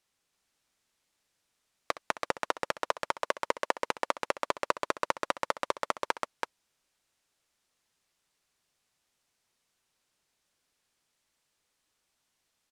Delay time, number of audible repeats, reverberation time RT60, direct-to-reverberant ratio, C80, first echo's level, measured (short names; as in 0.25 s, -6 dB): 65 ms, 2, none, none, none, -16.0 dB